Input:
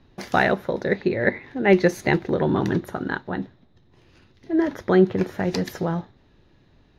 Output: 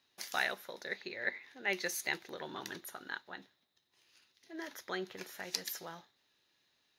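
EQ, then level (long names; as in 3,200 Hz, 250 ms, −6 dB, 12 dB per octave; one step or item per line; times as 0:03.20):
first difference
+1.0 dB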